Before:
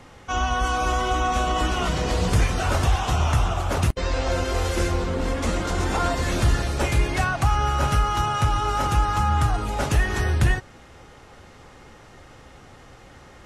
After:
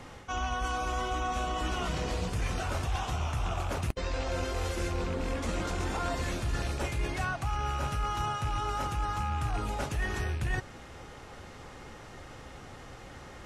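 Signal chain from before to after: rattle on loud lows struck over -22 dBFS, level -25 dBFS; reverse; compression 6:1, threshold -29 dBFS, peak gain reduction 14 dB; reverse

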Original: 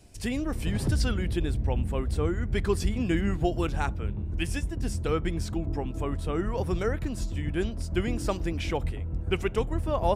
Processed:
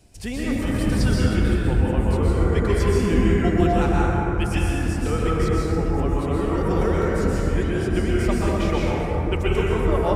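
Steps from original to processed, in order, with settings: plate-style reverb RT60 3.9 s, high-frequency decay 0.3×, pre-delay 110 ms, DRR -7 dB

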